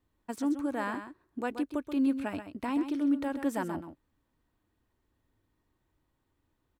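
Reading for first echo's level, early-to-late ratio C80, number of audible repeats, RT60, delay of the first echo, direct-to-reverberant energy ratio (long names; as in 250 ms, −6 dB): −9.5 dB, no reverb audible, 1, no reverb audible, 130 ms, no reverb audible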